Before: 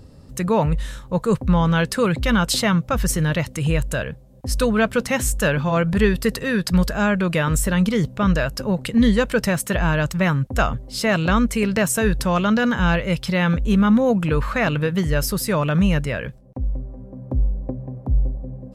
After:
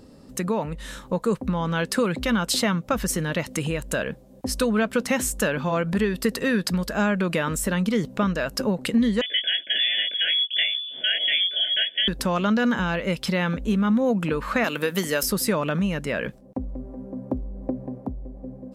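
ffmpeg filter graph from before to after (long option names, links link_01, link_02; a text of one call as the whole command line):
ffmpeg -i in.wav -filter_complex "[0:a]asettb=1/sr,asplit=3[link_01][link_02][link_03];[link_01]atrim=end=9.214[link_04];[link_02]atrim=start=9.21:end=12.08,asetpts=PTS-STARTPTS,afade=type=in:duration=0.004:curve=qsin,afade=type=out:start_time=2.866:duration=0.004:curve=qsin,flanger=delay=19:depth=5:speed=1.9,asuperstop=centerf=2400:order=20:qfactor=3.1,lowpass=frequency=3000:width_type=q:width=0.5098,lowpass=frequency=3000:width_type=q:width=0.6013,lowpass=frequency=3000:width_type=q:width=0.9,lowpass=frequency=3000:width_type=q:width=2.563,afreqshift=-3500[link_05];[link_03]atrim=start=12.076[link_06];[link_04][link_05]acrossfade=duration=0.004:curve1=hsin:curve2=qsin[link_07];[link_07][link_06]acrossfade=duration=0.004:curve1=qsin:curve2=hsin,asettb=1/sr,asplit=3[link_08][link_09][link_10];[link_08]atrim=end=14.644[link_11];[link_09]atrim=start=14.64:end=15.23,asetpts=PTS-STARTPTS,afade=type=in:duration=0.004:curve=qsin,afade=type=out:start_time=0.586:duration=0.004:curve=qsin,highpass=110,aemphasis=mode=production:type=bsi[link_12];[link_10]atrim=start=15.226[link_13];[link_11][link_12]acrossfade=duration=0.004:curve1=hsin:curve2=qsin[link_14];[link_14][link_13]acrossfade=duration=0.004:curve1=qsin:curve2=hsin,acompressor=threshold=-23dB:ratio=5,lowshelf=frequency=160:width_type=q:width=1.5:gain=-9.5,dynaudnorm=framelen=140:gausssize=13:maxgain=3dB" out.wav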